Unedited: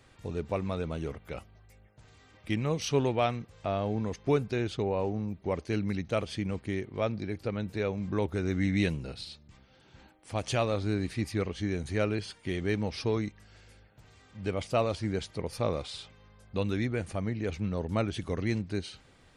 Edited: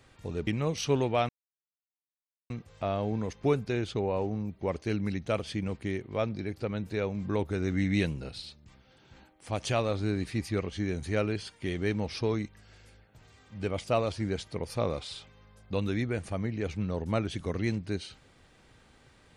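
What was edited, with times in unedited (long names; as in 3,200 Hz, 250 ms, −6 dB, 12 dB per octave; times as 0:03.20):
0:00.47–0:02.51: remove
0:03.33: splice in silence 1.21 s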